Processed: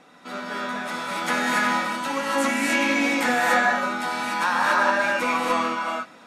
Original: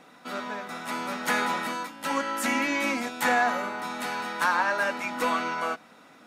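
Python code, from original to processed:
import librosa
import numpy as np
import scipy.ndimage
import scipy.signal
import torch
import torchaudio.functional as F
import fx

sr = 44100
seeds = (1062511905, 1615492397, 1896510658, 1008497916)

y = scipy.signal.sosfilt(scipy.signal.butter(2, 11000.0, 'lowpass', fs=sr, output='sos'), x)
y = fx.rev_gated(y, sr, seeds[0], gate_ms=310, shape='rising', drr_db=-4.0)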